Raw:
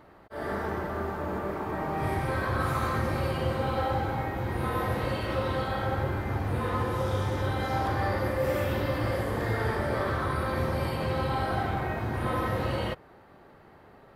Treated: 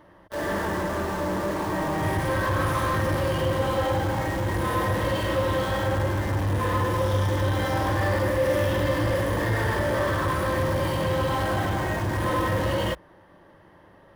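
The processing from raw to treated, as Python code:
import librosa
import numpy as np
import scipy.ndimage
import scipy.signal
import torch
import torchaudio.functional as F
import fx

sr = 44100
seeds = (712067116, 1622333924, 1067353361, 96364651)

p1 = fx.ripple_eq(x, sr, per_octave=1.2, db=8)
p2 = fx.quant_companded(p1, sr, bits=2)
y = p1 + F.gain(torch.from_numpy(p2), -8.0).numpy()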